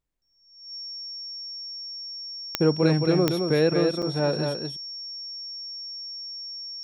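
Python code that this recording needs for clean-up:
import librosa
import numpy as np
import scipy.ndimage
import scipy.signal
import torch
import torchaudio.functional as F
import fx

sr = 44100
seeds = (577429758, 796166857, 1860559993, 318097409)

y = fx.fix_declick_ar(x, sr, threshold=10.0)
y = fx.notch(y, sr, hz=5500.0, q=30.0)
y = fx.fix_interpolate(y, sr, at_s=(4.02,), length_ms=6.5)
y = fx.fix_echo_inverse(y, sr, delay_ms=218, level_db=-5.0)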